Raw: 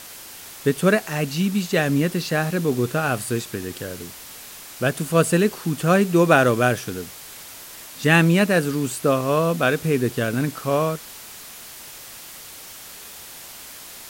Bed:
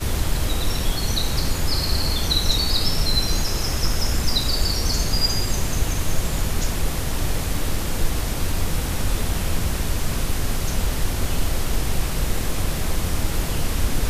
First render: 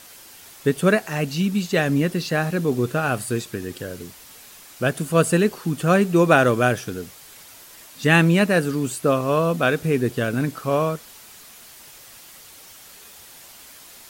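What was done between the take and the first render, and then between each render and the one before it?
denoiser 6 dB, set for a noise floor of -40 dBFS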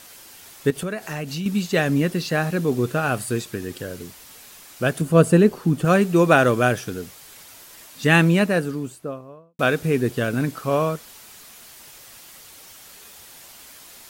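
0.7–1.46 compressor 5:1, threshold -25 dBFS; 5.01–5.85 tilt shelf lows +5 dB; 8.17–9.59 studio fade out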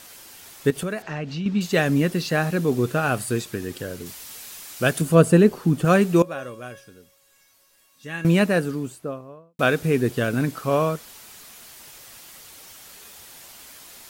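1.02–1.61 air absorption 160 m; 4.06–5.15 high shelf 2200 Hz +6 dB; 6.22–8.25 resonator 550 Hz, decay 0.42 s, mix 90%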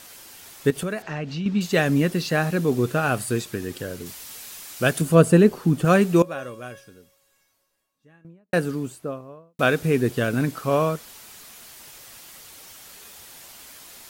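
6.67–8.53 studio fade out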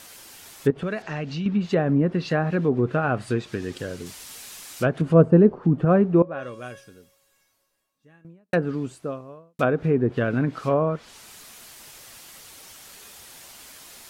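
treble ducked by the level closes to 960 Hz, closed at -16 dBFS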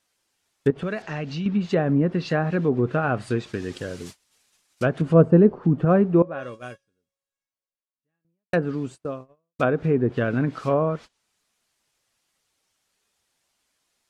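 gate -37 dBFS, range -27 dB; LPF 9900 Hz 12 dB/oct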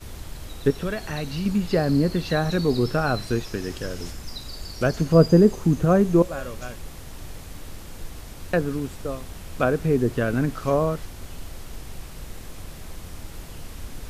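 add bed -15 dB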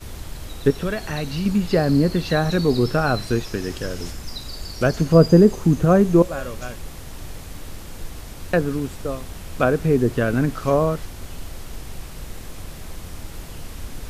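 gain +3 dB; limiter -3 dBFS, peak gain reduction 1.5 dB

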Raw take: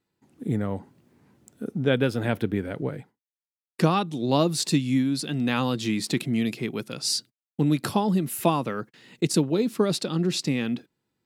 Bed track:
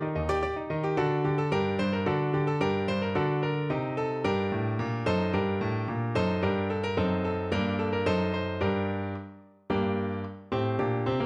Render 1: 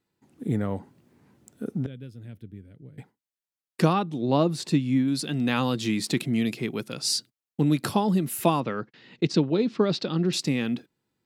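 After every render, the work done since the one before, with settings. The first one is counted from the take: 1.86–2.98 passive tone stack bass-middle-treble 10-0-1; 3.93–5.08 high shelf 3500 Hz -12 dB; 8.6–10.33 LPF 5100 Hz 24 dB/oct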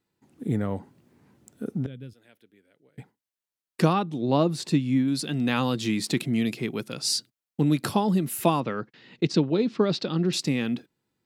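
2.13–2.98 HPF 620 Hz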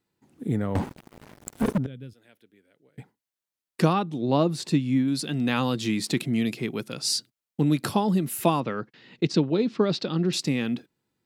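0.75–1.78 sample leveller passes 5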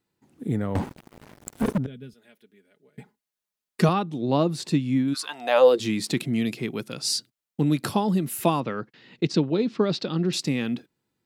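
1.87–3.89 comb 4.8 ms; 5.13–5.79 resonant high-pass 1300 Hz -> 390 Hz, resonance Q 11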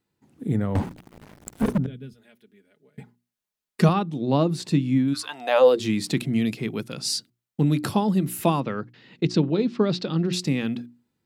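tone controls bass +4 dB, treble -1 dB; notches 60/120/180/240/300/360 Hz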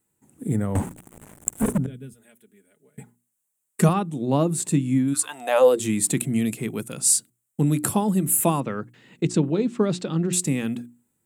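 resonant high shelf 6300 Hz +10 dB, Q 3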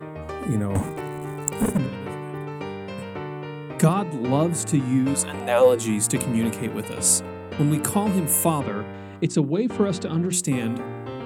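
add bed track -5.5 dB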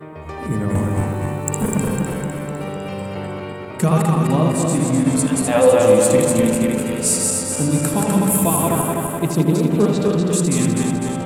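regenerating reverse delay 0.126 s, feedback 75%, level -2 dB; darkening echo 80 ms, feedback 65%, low-pass 3700 Hz, level -7 dB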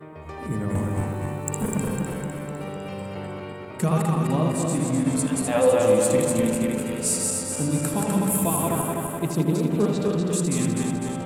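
gain -6 dB

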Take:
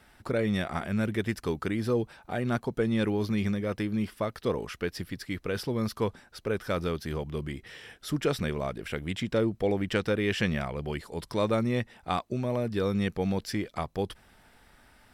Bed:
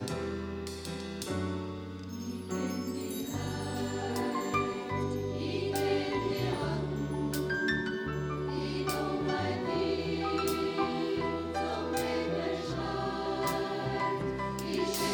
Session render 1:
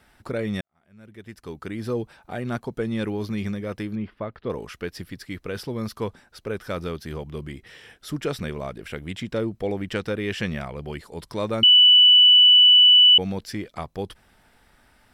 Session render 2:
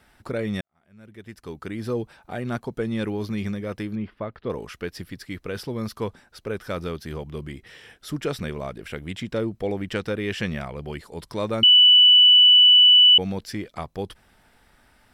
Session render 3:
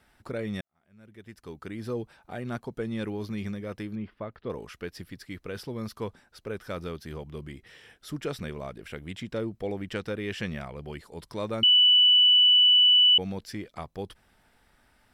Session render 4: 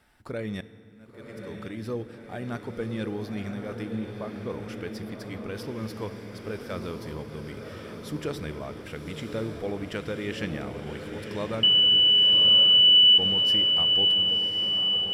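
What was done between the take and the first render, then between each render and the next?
0.61–1.89 fade in quadratic; 3.95–4.5 air absorption 370 m; 11.63–13.18 bleep 2970 Hz -9.5 dBFS
nothing audible
gain -5.5 dB
diffused feedback echo 1.079 s, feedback 68%, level -6 dB; FDN reverb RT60 2.2 s, low-frequency decay 1.4×, high-frequency decay 0.75×, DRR 14 dB

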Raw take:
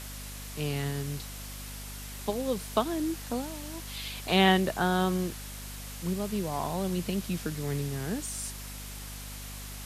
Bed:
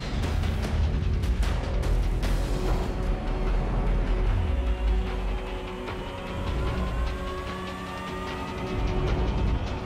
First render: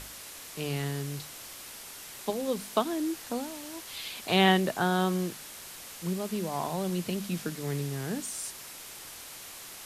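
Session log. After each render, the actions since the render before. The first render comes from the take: notches 50/100/150/200/250 Hz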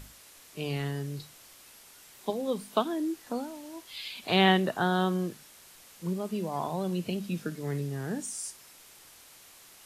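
noise print and reduce 9 dB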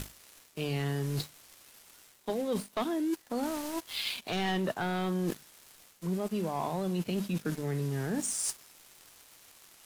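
sample leveller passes 3; reverse; compressor 6:1, threshold -30 dBFS, peak gain reduction 16 dB; reverse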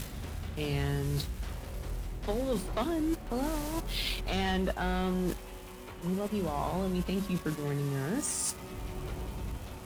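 add bed -12.5 dB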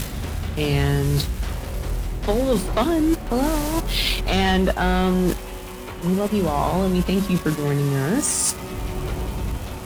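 gain +11.5 dB

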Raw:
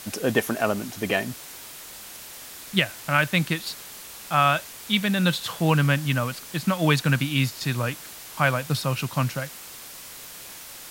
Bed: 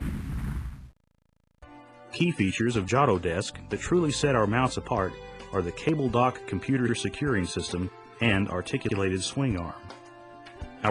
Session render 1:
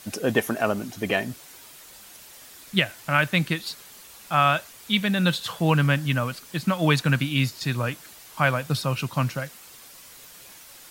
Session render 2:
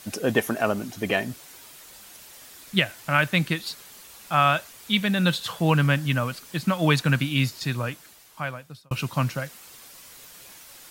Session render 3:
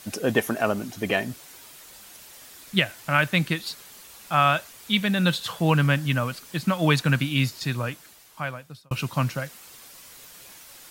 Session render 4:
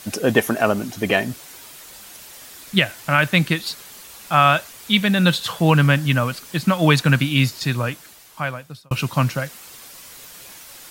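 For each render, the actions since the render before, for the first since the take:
denoiser 7 dB, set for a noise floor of -42 dBFS
7.54–8.91 fade out
nothing audible
gain +5.5 dB; limiter -2 dBFS, peak gain reduction 2.5 dB

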